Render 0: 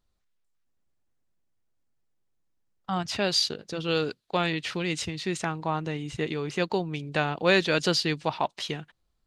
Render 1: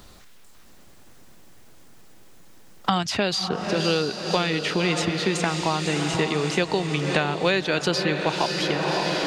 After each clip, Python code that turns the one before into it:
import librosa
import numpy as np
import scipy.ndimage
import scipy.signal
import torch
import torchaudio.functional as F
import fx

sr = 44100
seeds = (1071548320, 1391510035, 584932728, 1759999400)

y = fx.echo_diffused(x, sr, ms=567, feedback_pct=59, wet_db=-8.5)
y = fx.band_squash(y, sr, depth_pct=100)
y = y * 10.0 ** (2.5 / 20.0)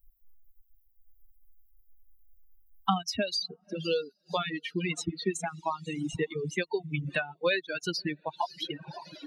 y = fx.bin_expand(x, sr, power=3.0)
y = fx.dereverb_blind(y, sr, rt60_s=1.7)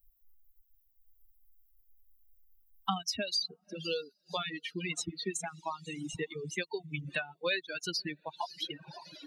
y = fx.high_shelf(x, sr, hz=2400.0, db=8.5)
y = y * 10.0 ** (-7.0 / 20.0)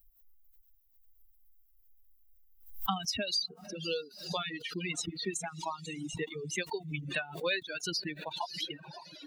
y = fx.pre_swell(x, sr, db_per_s=100.0)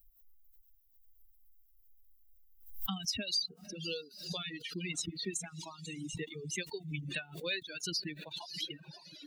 y = fx.peak_eq(x, sr, hz=900.0, db=-14.5, octaves=1.6)